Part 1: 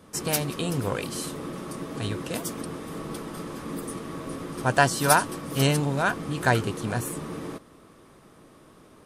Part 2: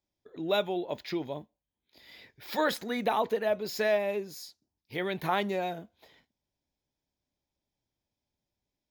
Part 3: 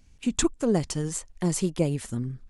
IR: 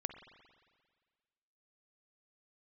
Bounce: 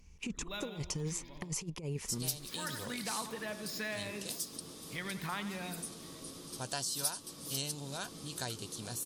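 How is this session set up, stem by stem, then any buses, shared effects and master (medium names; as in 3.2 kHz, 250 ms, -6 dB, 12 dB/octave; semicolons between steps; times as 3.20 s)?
-15.0 dB, 1.95 s, no send, no echo send, resonant high shelf 2.9 kHz +14 dB, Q 1.5
-2.0 dB, 0.00 s, no send, echo send -12.5 dB, high-order bell 500 Hz -11.5 dB; auto duck -8 dB, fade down 0.80 s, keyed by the third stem
-6.0 dB, 0.00 s, no send, no echo send, rippled EQ curve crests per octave 0.79, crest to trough 8 dB; compressor with a negative ratio -27 dBFS, ratio -0.5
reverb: none
echo: feedback delay 88 ms, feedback 55%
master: compression 2:1, threshold -38 dBFS, peak gain reduction 11 dB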